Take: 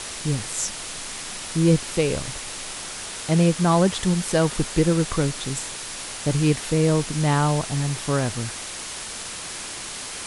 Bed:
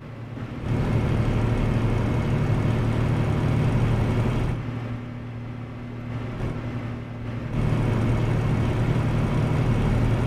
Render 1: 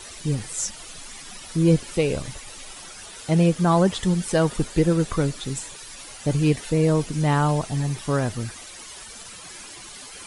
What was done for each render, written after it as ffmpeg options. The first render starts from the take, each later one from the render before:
ffmpeg -i in.wav -af "afftdn=noise_reduction=12:noise_floor=-34" out.wav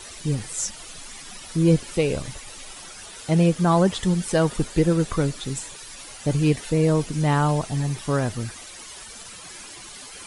ffmpeg -i in.wav -af anull out.wav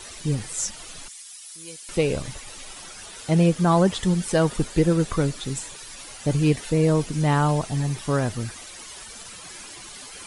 ffmpeg -i in.wav -filter_complex "[0:a]asettb=1/sr,asplit=3[link_01][link_02][link_03];[link_01]atrim=end=1.084[link_04];[link_02]atrim=start=1.08:end=1.89,asetpts=PTS-STARTPTS,afade=type=in:duration=0.004:curve=qsin,afade=type=out:start_time=0.806:duration=0.004:curve=qsin,aderivative[link_05];[link_03]atrim=start=1.886[link_06];[link_04][link_05]acrossfade=duration=0.004:curve1=hsin:curve2=qsin[link_07];[link_07][link_06]acrossfade=duration=0.004:curve1=qsin:curve2=hsin" out.wav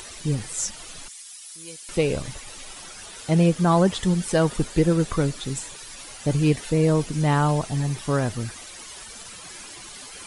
ffmpeg -i in.wav -af "acompressor=mode=upward:threshold=-40dB:ratio=2.5" out.wav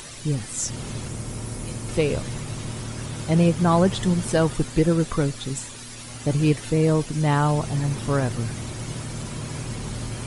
ffmpeg -i in.wav -i bed.wav -filter_complex "[1:a]volume=-10dB[link_01];[0:a][link_01]amix=inputs=2:normalize=0" out.wav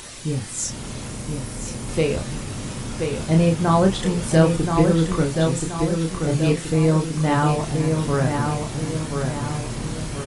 ffmpeg -i in.wav -filter_complex "[0:a]asplit=2[link_01][link_02];[link_02]adelay=31,volume=-4.5dB[link_03];[link_01][link_03]amix=inputs=2:normalize=0,asplit=2[link_04][link_05];[link_05]adelay=1028,lowpass=frequency=4000:poles=1,volume=-4.5dB,asplit=2[link_06][link_07];[link_07]adelay=1028,lowpass=frequency=4000:poles=1,volume=0.48,asplit=2[link_08][link_09];[link_09]adelay=1028,lowpass=frequency=4000:poles=1,volume=0.48,asplit=2[link_10][link_11];[link_11]adelay=1028,lowpass=frequency=4000:poles=1,volume=0.48,asplit=2[link_12][link_13];[link_13]adelay=1028,lowpass=frequency=4000:poles=1,volume=0.48,asplit=2[link_14][link_15];[link_15]adelay=1028,lowpass=frequency=4000:poles=1,volume=0.48[link_16];[link_04][link_06][link_08][link_10][link_12][link_14][link_16]amix=inputs=7:normalize=0" out.wav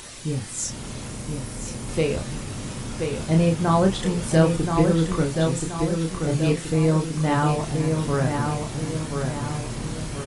ffmpeg -i in.wav -af "volume=-2dB" out.wav

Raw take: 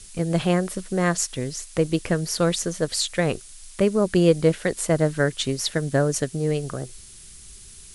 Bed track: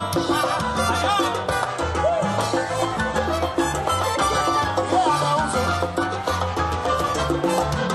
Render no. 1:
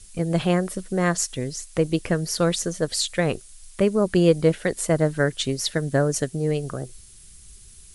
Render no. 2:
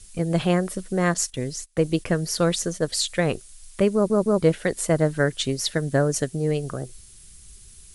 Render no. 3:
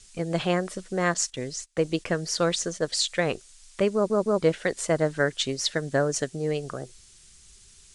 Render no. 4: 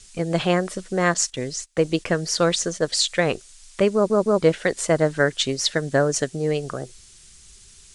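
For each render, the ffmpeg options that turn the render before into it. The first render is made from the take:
ffmpeg -i in.wav -af "afftdn=noise_reduction=6:noise_floor=-45" out.wav
ffmpeg -i in.wav -filter_complex "[0:a]asettb=1/sr,asplit=3[link_01][link_02][link_03];[link_01]atrim=end=1.144[link_04];[link_02]atrim=start=1.14:end=2.93,asetpts=PTS-STARTPTS,afade=type=in:duration=0.004:curve=qsin,afade=type=out:start_time=1.786:duration=0.004:curve=qsin,agate=range=-20dB:threshold=-38dB:ratio=16:release=100:detection=peak[link_05];[link_03]atrim=start=2.926[link_06];[link_04][link_05]acrossfade=duration=0.004:curve1=hsin:curve2=qsin[link_07];[link_07][link_06]acrossfade=duration=0.004:curve1=qsin:curve2=hsin,asplit=4[link_08][link_09][link_10][link_11];[link_08]atrim=end=4.102[link_12];[link_09]atrim=start=3.938:end=4.102[link_13];[link_10]atrim=start=3.938:end=4.102[link_14];[link_11]atrim=start=4.418[link_15];[link_12][link_13]acrossfade=duration=0.004:curve1=hsin:curve2=hsin[link_16];[link_16][link_14]acrossfade=duration=0.004:curve1=hsin:curve2=hsin[link_17];[link_17][link_15]acrossfade=duration=0.004:curve1=hsin:curve2=hsin" out.wav
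ffmpeg -i in.wav -af "lowpass=frequency=8000:width=0.5412,lowpass=frequency=8000:width=1.3066,lowshelf=frequency=270:gain=-9.5" out.wav
ffmpeg -i in.wav -af "volume=4.5dB" out.wav

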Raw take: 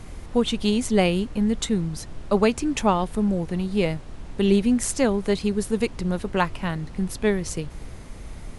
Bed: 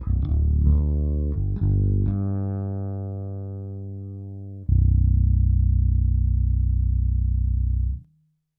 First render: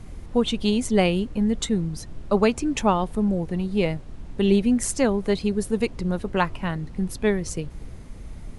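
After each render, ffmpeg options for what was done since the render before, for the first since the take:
ffmpeg -i in.wav -af "afftdn=noise_reduction=6:noise_floor=-40" out.wav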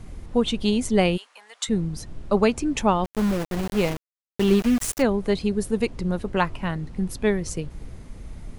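ffmpeg -i in.wav -filter_complex "[0:a]asplit=3[link_01][link_02][link_03];[link_01]afade=type=out:start_time=1.16:duration=0.02[link_04];[link_02]highpass=frequency=880:width=0.5412,highpass=frequency=880:width=1.3066,afade=type=in:start_time=1.16:duration=0.02,afade=type=out:start_time=1.67:duration=0.02[link_05];[link_03]afade=type=in:start_time=1.67:duration=0.02[link_06];[link_04][link_05][link_06]amix=inputs=3:normalize=0,asplit=3[link_07][link_08][link_09];[link_07]afade=type=out:start_time=3.04:duration=0.02[link_10];[link_08]aeval=exprs='val(0)*gte(abs(val(0)),0.0501)':channel_layout=same,afade=type=in:start_time=3.04:duration=0.02,afade=type=out:start_time=5.01:duration=0.02[link_11];[link_09]afade=type=in:start_time=5.01:duration=0.02[link_12];[link_10][link_11][link_12]amix=inputs=3:normalize=0" out.wav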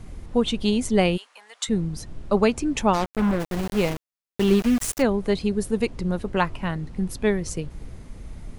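ffmpeg -i in.wav -filter_complex "[0:a]asplit=3[link_01][link_02][link_03];[link_01]afade=type=out:start_time=2.93:duration=0.02[link_04];[link_02]acrusher=bits=3:mix=0:aa=0.5,afade=type=in:start_time=2.93:duration=0.02,afade=type=out:start_time=3.39:duration=0.02[link_05];[link_03]afade=type=in:start_time=3.39:duration=0.02[link_06];[link_04][link_05][link_06]amix=inputs=3:normalize=0" out.wav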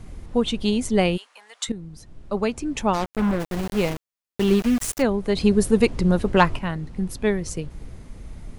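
ffmpeg -i in.wav -filter_complex "[0:a]asettb=1/sr,asplit=3[link_01][link_02][link_03];[link_01]atrim=end=5.364[link_04];[link_02]atrim=start=5.36:end=6.59,asetpts=PTS-STARTPTS,afade=type=in:duration=0.004:curve=qsin,afade=type=out:start_time=1.226:duration=0.004:curve=qsin,acontrast=71[link_05];[link_03]atrim=start=6.586[link_06];[link_04][link_05]acrossfade=duration=0.004:curve1=hsin:curve2=qsin[link_07];[link_07][link_06]acrossfade=duration=0.004:curve1=qsin:curve2=hsin,asplit=2[link_08][link_09];[link_08]atrim=end=1.72,asetpts=PTS-STARTPTS,afade=type=out:start_time=1.716:duration=0.004:curve=hsin:silence=0.211349[link_10];[link_09]atrim=start=1.72,asetpts=PTS-STARTPTS,afade=type=in:duration=1.46:silence=0.211349[link_11];[link_10][link_11]concat=n=2:v=0:a=1" out.wav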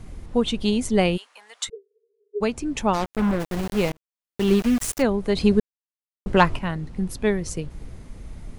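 ffmpeg -i in.wav -filter_complex "[0:a]asplit=3[link_01][link_02][link_03];[link_01]afade=type=out:start_time=1.68:duration=0.02[link_04];[link_02]asuperpass=centerf=430:order=20:qfactor=5.1,afade=type=in:start_time=1.68:duration=0.02,afade=type=out:start_time=2.4:duration=0.02[link_05];[link_03]afade=type=in:start_time=2.4:duration=0.02[link_06];[link_04][link_05][link_06]amix=inputs=3:normalize=0,asplit=4[link_07][link_08][link_09][link_10];[link_07]atrim=end=3.92,asetpts=PTS-STARTPTS,afade=type=out:start_time=3.916:duration=0.004:curve=hsin[link_11];[link_08]atrim=start=3.92:end=5.6,asetpts=PTS-STARTPTS,afade=type=in:duration=0.59,afade=type=out:start_time=1.676:duration=0.004:curve=hsin[link_12];[link_09]atrim=start=5.6:end=6.26,asetpts=PTS-STARTPTS,volume=0[link_13];[link_10]atrim=start=6.26,asetpts=PTS-STARTPTS,afade=type=in:duration=0.004:curve=hsin[link_14];[link_11][link_12][link_13][link_14]concat=n=4:v=0:a=1" out.wav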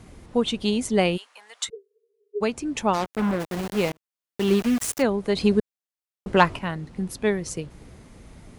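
ffmpeg -i in.wav -af "highpass=frequency=79:poles=1,lowshelf=frequency=160:gain=-4.5" out.wav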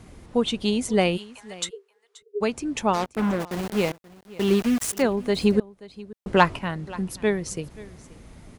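ffmpeg -i in.wav -af "aecho=1:1:530:0.1" out.wav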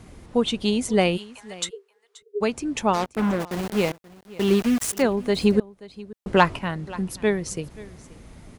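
ffmpeg -i in.wav -af "volume=1dB,alimiter=limit=-3dB:level=0:latency=1" out.wav

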